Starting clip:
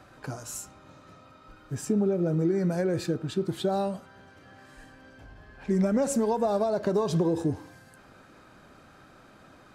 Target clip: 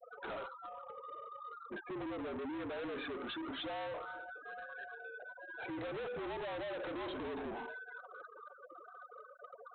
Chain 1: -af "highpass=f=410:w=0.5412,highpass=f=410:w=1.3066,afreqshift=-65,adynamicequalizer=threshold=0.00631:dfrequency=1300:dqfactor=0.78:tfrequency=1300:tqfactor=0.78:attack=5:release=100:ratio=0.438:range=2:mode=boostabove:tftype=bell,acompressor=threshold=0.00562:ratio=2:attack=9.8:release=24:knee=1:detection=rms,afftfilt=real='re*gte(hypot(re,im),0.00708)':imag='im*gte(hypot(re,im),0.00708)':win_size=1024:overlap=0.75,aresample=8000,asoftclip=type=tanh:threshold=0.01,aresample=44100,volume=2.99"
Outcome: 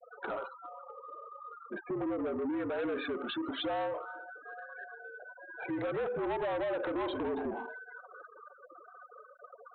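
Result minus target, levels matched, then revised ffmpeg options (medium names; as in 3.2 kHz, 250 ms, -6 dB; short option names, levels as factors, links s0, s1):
saturation: distortion -6 dB
-af "highpass=f=410:w=0.5412,highpass=f=410:w=1.3066,afreqshift=-65,adynamicequalizer=threshold=0.00631:dfrequency=1300:dqfactor=0.78:tfrequency=1300:tqfactor=0.78:attack=5:release=100:ratio=0.438:range=2:mode=boostabove:tftype=bell,acompressor=threshold=0.00562:ratio=2:attack=9.8:release=24:knee=1:detection=rms,afftfilt=real='re*gte(hypot(re,im),0.00708)':imag='im*gte(hypot(re,im),0.00708)':win_size=1024:overlap=0.75,aresample=8000,asoftclip=type=tanh:threshold=0.00335,aresample=44100,volume=2.99"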